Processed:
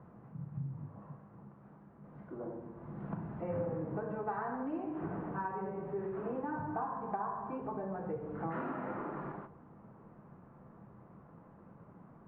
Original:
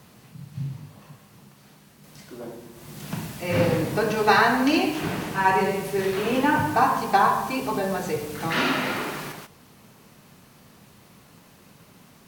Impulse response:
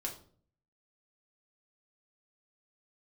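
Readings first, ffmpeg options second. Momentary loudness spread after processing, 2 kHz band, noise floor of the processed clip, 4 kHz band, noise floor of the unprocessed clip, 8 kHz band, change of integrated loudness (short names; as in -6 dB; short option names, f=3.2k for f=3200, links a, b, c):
19 LU, -24.0 dB, -58 dBFS, under -40 dB, -53 dBFS, under -40 dB, -16.5 dB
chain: -filter_complex "[0:a]lowpass=f=1.3k:w=0.5412,lowpass=f=1.3k:w=1.3066,acompressor=threshold=-34dB:ratio=4,asplit=2[a][b];[1:a]atrim=start_sample=2205,adelay=6[c];[b][c]afir=irnorm=-1:irlink=0,volume=-11dB[d];[a][d]amix=inputs=2:normalize=0,volume=-3.5dB"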